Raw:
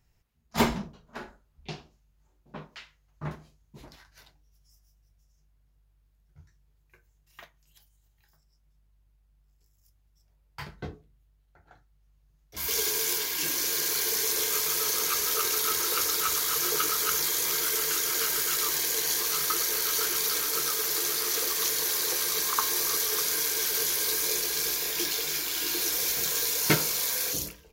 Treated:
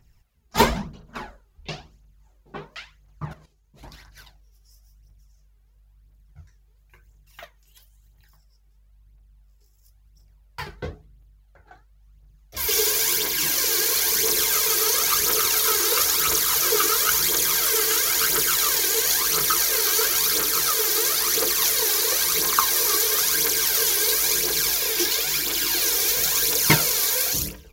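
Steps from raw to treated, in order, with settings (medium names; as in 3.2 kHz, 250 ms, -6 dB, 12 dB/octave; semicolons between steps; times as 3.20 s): 3.25–3.83 s: level held to a coarse grid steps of 14 dB; phaser 0.98 Hz, delay 2.7 ms, feedback 55%; trim +5 dB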